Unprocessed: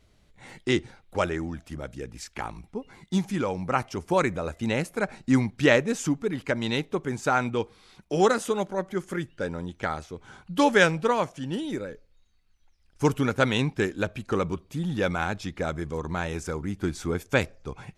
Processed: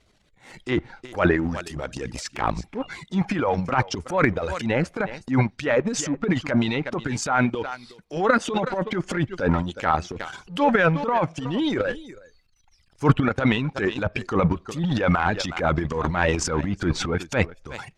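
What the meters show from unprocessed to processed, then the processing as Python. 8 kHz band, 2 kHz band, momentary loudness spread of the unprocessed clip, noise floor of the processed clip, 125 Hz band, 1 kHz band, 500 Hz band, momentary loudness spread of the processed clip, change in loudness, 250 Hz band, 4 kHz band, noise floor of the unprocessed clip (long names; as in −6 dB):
+4.5 dB, +3.0 dB, 14 LU, −61 dBFS, +5.5 dB, +4.5 dB, +1.5 dB, 11 LU, +3.0 dB, +3.5 dB, +1.5 dB, −62 dBFS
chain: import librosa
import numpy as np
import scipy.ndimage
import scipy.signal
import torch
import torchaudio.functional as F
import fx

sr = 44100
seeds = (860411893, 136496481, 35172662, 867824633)

y = fx.dereverb_blind(x, sr, rt60_s=1.2)
y = fx.low_shelf(y, sr, hz=310.0, db=-5.0)
y = y + 10.0 ** (-22.5 / 20.0) * np.pad(y, (int(365 * sr / 1000.0), 0))[:len(y)]
y = fx.dynamic_eq(y, sr, hz=400.0, q=7.1, threshold_db=-46.0, ratio=4.0, max_db=-4)
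y = scipy.signal.sosfilt(scipy.signal.butter(2, 10000.0, 'lowpass', fs=sr, output='sos'), y)
y = fx.leveller(y, sr, passes=1)
y = fx.rider(y, sr, range_db=5, speed_s=0.5)
y = fx.env_lowpass_down(y, sr, base_hz=2100.0, full_db=-20.5)
y = fx.transient(y, sr, attack_db=-9, sustain_db=12)
y = F.gain(torch.from_numpy(y), 3.0).numpy()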